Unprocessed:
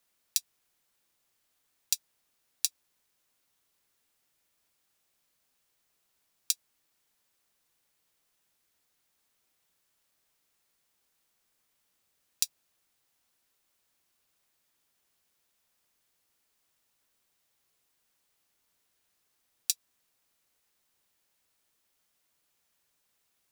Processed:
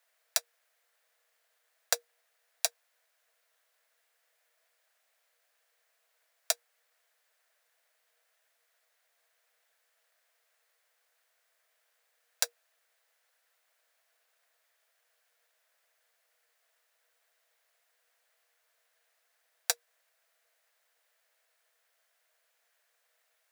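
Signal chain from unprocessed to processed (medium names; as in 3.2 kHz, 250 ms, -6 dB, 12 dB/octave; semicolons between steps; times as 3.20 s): in parallel at -10.5 dB: sample-and-hold 14×; on the sum: rippled Chebyshev high-pass 460 Hz, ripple 9 dB; trim +7.5 dB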